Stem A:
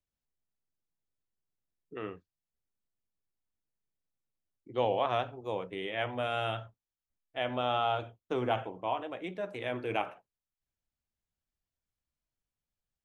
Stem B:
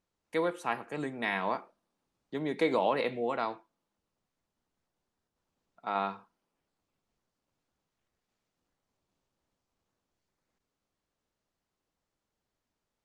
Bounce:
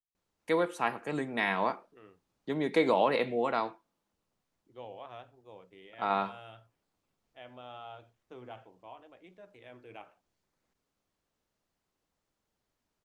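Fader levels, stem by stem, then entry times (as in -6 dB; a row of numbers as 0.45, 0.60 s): -16.5, +2.0 dB; 0.00, 0.15 s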